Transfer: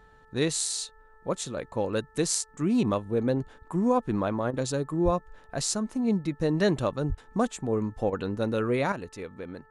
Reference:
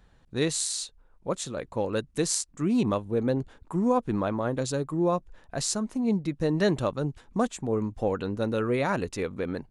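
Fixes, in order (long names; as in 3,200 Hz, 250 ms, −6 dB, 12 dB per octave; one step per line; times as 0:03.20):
hum removal 438 Hz, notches 4
0:05.04–0:05.16: high-pass filter 140 Hz 24 dB per octave
0:07.08–0:07.20: high-pass filter 140 Hz 24 dB per octave
repair the gap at 0:04.51/0:07.15/0:08.10, 25 ms
0:08.92: level correction +8 dB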